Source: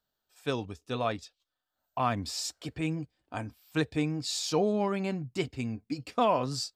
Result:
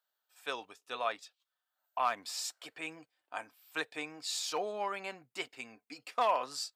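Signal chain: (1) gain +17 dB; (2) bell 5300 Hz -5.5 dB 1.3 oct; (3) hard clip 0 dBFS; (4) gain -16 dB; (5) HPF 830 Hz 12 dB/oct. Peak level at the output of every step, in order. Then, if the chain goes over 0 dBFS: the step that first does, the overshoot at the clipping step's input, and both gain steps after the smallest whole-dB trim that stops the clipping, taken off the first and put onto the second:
+4.0, +3.5, 0.0, -16.0, -18.5 dBFS; step 1, 3.5 dB; step 1 +13 dB, step 4 -12 dB

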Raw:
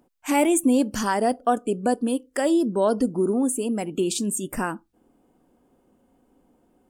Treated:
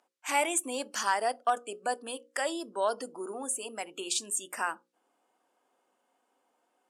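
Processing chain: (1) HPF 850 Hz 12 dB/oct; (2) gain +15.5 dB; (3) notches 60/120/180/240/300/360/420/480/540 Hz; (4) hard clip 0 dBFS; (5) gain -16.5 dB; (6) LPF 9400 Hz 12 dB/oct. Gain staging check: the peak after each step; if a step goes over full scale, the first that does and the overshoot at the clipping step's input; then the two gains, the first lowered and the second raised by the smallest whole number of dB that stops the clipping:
-10.5, +5.0, +5.0, 0.0, -16.5, -16.0 dBFS; step 2, 5.0 dB; step 2 +10.5 dB, step 5 -11.5 dB

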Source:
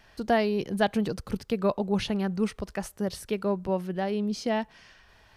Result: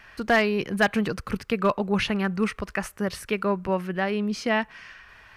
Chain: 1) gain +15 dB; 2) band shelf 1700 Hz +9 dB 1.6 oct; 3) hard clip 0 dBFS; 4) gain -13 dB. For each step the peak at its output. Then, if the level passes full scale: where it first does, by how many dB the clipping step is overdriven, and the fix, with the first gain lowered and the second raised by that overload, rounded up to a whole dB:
+4.0, +9.5, 0.0, -13.0 dBFS; step 1, 9.5 dB; step 1 +5 dB, step 4 -3 dB

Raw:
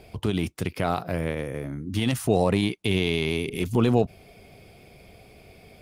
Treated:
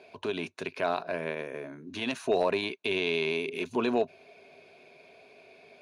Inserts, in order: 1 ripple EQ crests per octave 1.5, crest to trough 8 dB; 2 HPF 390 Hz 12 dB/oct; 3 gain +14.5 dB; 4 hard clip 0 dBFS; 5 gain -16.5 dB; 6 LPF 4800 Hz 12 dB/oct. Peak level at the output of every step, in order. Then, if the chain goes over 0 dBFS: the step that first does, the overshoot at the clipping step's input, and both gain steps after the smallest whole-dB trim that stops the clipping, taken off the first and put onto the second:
-8.0, -11.0, +3.5, 0.0, -16.5, -16.5 dBFS; step 3, 3.5 dB; step 3 +10.5 dB, step 5 -12.5 dB

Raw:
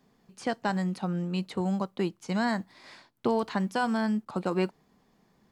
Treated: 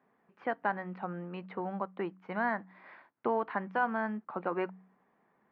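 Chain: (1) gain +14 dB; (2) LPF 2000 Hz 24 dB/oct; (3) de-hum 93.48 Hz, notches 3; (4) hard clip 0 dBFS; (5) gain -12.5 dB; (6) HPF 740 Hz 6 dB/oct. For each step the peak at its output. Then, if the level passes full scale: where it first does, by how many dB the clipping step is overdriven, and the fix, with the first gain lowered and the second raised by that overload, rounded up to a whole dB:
-2.0, -2.0, -2.0, -2.0, -14.5, -16.5 dBFS; no overload

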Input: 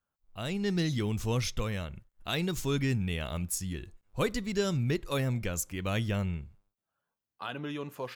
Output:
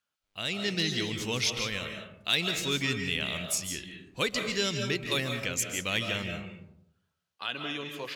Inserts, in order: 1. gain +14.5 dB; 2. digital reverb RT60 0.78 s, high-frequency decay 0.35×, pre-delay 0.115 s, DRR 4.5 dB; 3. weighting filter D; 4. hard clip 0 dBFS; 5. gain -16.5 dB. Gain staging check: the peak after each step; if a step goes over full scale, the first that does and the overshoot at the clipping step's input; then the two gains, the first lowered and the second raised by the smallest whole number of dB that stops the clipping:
-2.5, -1.0, +5.0, 0.0, -16.5 dBFS; step 3, 5.0 dB; step 1 +9.5 dB, step 5 -11.5 dB

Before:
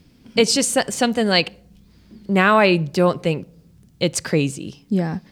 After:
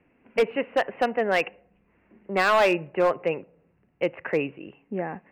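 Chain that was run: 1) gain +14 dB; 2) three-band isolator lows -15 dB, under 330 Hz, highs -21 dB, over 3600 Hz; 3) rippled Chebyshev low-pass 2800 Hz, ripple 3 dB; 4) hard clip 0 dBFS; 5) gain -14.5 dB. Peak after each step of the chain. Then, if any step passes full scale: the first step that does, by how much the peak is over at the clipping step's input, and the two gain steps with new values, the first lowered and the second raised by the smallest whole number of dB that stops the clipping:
+11.0, +9.5, +8.5, 0.0, -14.5 dBFS; step 1, 8.5 dB; step 1 +5 dB, step 5 -5.5 dB

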